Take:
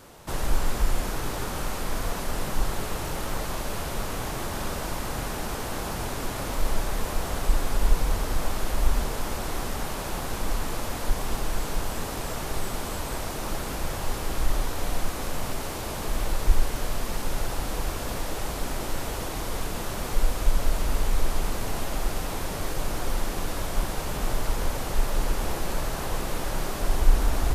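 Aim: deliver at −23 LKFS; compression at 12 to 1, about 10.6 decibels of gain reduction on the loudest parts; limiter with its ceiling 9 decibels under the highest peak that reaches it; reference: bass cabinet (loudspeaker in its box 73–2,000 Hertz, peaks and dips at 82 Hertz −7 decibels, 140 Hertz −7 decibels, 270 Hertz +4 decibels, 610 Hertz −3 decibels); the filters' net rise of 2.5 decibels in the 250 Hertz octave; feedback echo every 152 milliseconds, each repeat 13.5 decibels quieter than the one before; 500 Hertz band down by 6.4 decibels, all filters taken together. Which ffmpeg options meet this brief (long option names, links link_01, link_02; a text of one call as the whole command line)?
ffmpeg -i in.wav -af "equalizer=frequency=250:width_type=o:gain=4,equalizer=frequency=500:width_type=o:gain=-8.5,acompressor=threshold=-21dB:ratio=12,alimiter=limit=-22.5dB:level=0:latency=1,highpass=frequency=73:width=0.5412,highpass=frequency=73:width=1.3066,equalizer=frequency=82:width_type=q:width=4:gain=-7,equalizer=frequency=140:width_type=q:width=4:gain=-7,equalizer=frequency=270:width_type=q:width=4:gain=4,equalizer=frequency=610:width_type=q:width=4:gain=-3,lowpass=frequency=2000:width=0.5412,lowpass=frequency=2000:width=1.3066,aecho=1:1:152|304:0.211|0.0444,volume=15.5dB" out.wav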